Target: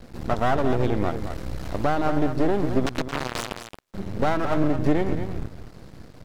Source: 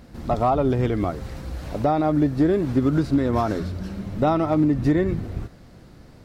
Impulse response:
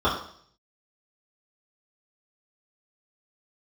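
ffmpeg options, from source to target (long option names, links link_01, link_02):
-filter_complex "[0:a]asplit=2[link_01][link_02];[link_02]acompressor=threshold=-32dB:ratio=6,volume=-2dB[link_03];[link_01][link_03]amix=inputs=2:normalize=0,asettb=1/sr,asplit=3[link_04][link_05][link_06];[link_04]atrim=end=2.864[link_07];[link_05]atrim=start=2.86:end=3.94,asetpts=PTS-STARTPTS,afade=type=in:duration=0.004:curve=qsin,afade=type=out:start_time=1.076:duration=0.004:curve=qsin,aeval=exprs='0.316*(cos(1*acos(clip(val(0)/0.316,-1,1)))-cos(1*PI/2))+0.0501*(cos(3*acos(clip(val(0)/0.316,-1,1)))-cos(3*PI/2))+0.00891*(cos(7*acos(clip(val(0)/0.316,-1,1)))-cos(7*PI/2))+0.158*(cos(8*acos(clip(val(0)/0.316,-1,1)))-cos(8*PI/2))':channel_layout=same[link_08];[link_06]atrim=start=3.936[link_09];[link_07][link_08]acrossfade=duration=0.004:curve1=hsin:curve2=qsin[link_10];[link_10][link_09]acrossfade=duration=0.004:curve1=qsin:curve2=hsin,aeval=exprs='max(val(0),0)':channel_layout=same,aecho=1:1:222:0.355"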